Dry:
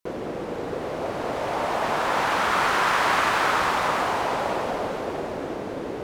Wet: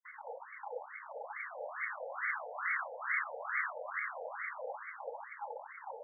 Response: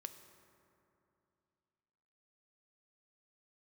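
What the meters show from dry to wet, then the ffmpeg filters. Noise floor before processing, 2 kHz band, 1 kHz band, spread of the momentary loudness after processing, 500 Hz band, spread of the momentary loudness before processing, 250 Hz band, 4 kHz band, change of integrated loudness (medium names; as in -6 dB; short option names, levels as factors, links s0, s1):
-32 dBFS, -10.5 dB, -18.5 dB, 11 LU, -18.0 dB, 11 LU, under -40 dB, under -40 dB, -15.0 dB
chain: -filter_complex "[0:a]asplit=3[s0][s1][s2];[s0]bandpass=f=270:t=q:w=8,volume=1[s3];[s1]bandpass=f=2290:t=q:w=8,volume=0.501[s4];[s2]bandpass=f=3010:t=q:w=8,volume=0.355[s5];[s3][s4][s5]amix=inputs=3:normalize=0,asoftclip=type=tanh:threshold=0.01,asplit=2[s6][s7];[1:a]atrim=start_sample=2205,lowpass=2300[s8];[s7][s8]afir=irnorm=-1:irlink=0,volume=0.531[s9];[s6][s9]amix=inputs=2:normalize=0,afftfilt=real='re*between(b*sr/1024,630*pow(1600/630,0.5+0.5*sin(2*PI*2.3*pts/sr))/1.41,630*pow(1600/630,0.5+0.5*sin(2*PI*2.3*pts/sr))*1.41)':imag='im*between(b*sr/1024,630*pow(1600/630,0.5+0.5*sin(2*PI*2.3*pts/sr))/1.41,630*pow(1600/630,0.5+0.5*sin(2*PI*2.3*pts/sr))*1.41)':win_size=1024:overlap=0.75,volume=5.96"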